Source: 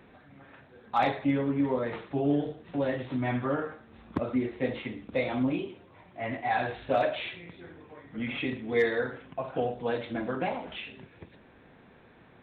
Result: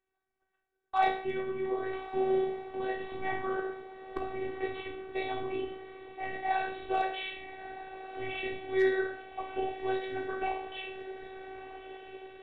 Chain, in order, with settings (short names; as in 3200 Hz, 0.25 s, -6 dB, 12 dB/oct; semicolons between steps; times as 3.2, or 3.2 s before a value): gate -47 dBFS, range -27 dB; bell 270 Hz -5.5 dB 0.27 oct; notches 50/100/150/200/250/300/350 Hz; resonator 58 Hz, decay 0.49 s, harmonics all, mix 80%; diffused feedback echo 1.265 s, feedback 57%, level -12 dB; robotiser 381 Hz; gain +7.5 dB